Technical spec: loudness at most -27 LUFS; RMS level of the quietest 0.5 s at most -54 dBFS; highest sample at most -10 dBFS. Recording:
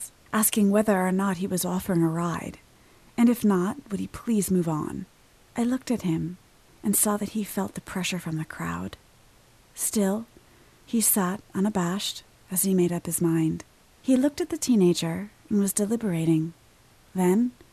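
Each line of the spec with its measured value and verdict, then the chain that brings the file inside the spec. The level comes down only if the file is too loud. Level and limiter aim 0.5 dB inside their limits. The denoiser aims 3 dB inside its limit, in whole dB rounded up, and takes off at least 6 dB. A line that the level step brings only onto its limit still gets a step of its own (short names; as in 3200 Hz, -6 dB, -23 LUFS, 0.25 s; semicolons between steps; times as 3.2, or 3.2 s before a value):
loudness -25.5 LUFS: fail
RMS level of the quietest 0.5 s -57 dBFS: OK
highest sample -7.5 dBFS: fail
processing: gain -2 dB; limiter -10.5 dBFS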